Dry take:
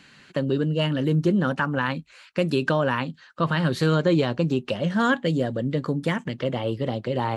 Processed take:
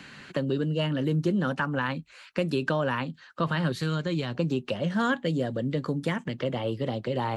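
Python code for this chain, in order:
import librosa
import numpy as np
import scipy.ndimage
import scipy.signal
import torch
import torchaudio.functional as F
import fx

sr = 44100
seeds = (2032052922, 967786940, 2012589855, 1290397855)

y = fx.peak_eq(x, sr, hz=540.0, db=-9.0, octaves=2.5, at=(3.72, 4.35))
y = fx.band_squash(y, sr, depth_pct=40)
y = y * librosa.db_to_amplitude(-4.0)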